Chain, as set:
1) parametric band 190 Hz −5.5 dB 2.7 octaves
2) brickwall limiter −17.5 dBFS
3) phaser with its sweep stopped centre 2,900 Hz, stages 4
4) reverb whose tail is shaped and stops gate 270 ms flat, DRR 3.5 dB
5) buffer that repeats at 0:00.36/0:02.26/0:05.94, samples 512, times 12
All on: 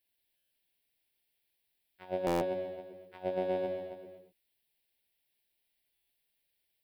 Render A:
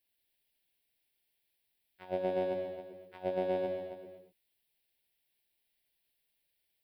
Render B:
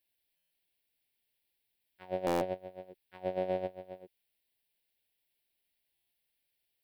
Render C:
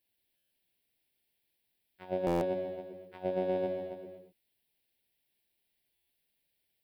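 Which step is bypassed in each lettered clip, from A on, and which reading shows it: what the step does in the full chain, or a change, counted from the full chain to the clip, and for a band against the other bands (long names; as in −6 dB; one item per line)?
5, change in momentary loudness spread −1 LU
4, change in momentary loudness spread +2 LU
1, 125 Hz band +4.0 dB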